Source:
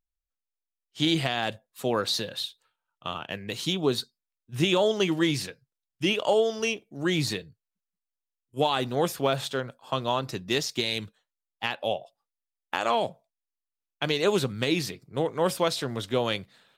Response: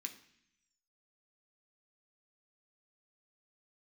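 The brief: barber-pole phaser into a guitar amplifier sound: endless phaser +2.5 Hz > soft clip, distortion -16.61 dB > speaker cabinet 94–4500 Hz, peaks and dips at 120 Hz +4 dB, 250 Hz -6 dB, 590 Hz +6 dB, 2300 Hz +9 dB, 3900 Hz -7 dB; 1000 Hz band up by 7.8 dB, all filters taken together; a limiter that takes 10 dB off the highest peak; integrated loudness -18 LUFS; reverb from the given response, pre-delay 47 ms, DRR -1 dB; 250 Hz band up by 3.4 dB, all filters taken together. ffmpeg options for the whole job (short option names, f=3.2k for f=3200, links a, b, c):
-filter_complex "[0:a]equalizer=f=250:t=o:g=6.5,equalizer=f=1k:t=o:g=8.5,alimiter=limit=-15.5dB:level=0:latency=1,asplit=2[a][b];[1:a]atrim=start_sample=2205,adelay=47[c];[b][c]afir=irnorm=-1:irlink=0,volume=4dB[d];[a][d]amix=inputs=2:normalize=0,asplit=2[e][f];[f]afreqshift=2.5[g];[e][g]amix=inputs=2:normalize=1,asoftclip=threshold=-19dB,highpass=94,equalizer=f=120:t=q:w=4:g=4,equalizer=f=250:t=q:w=4:g=-6,equalizer=f=590:t=q:w=4:g=6,equalizer=f=2.3k:t=q:w=4:g=9,equalizer=f=3.9k:t=q:w=4:g=-7,lowpass=f=4.5k:w=0.5412,lowpass=f=4.5k:w=1.3066,volume=11dB"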